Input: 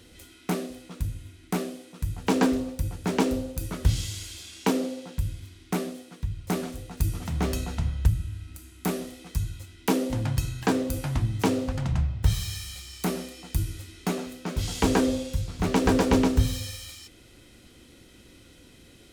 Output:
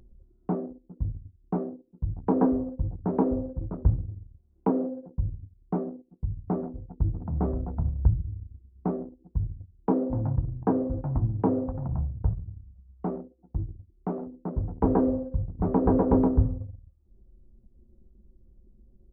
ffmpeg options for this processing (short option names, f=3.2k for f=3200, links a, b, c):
-filter_complex "[0:a]asettb=1/sr,asplit=3[a][b][c];[a]atrim=end=11.674[d];[b]atrim=start=11.67:end=14.22,asetpts=PTS-STARTPTS,afade=t=in:d=0.004:c=qsin,afade=t=out:st=2.546:d=0.004:c=qsin,lowshelf=f=330:g=-4[e];[c]atrim=start=14.216[f];[d][e]acrossfade=d=0.004:c1=hsin:c2=qsin[g];[g][f]acrossfade=d=0.004:c1=qsin:c2=hsin,lowpass=f=1k:w=0.5412,lowpass=f=1k:w=1.3066,anlmdn=2.51,acompressor=mode=upward:threshold=-43dB:ratio=2.5"